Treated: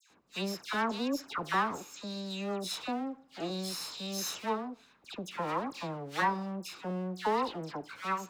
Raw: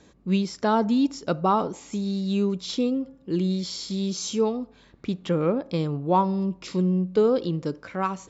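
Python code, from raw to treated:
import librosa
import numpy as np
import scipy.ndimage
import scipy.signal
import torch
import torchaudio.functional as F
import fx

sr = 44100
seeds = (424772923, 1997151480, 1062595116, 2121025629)

y = fx.lower_of_two(x, sr, delay_ms=0.77)
y = fx.highpass(y, sr, hz=630.0, slope=6)
y = fx.dispersion(y, sr, late='lows', ms=103.0, hz=1800.0)
y = y * 10.0 ** (-2.5 / 20.0)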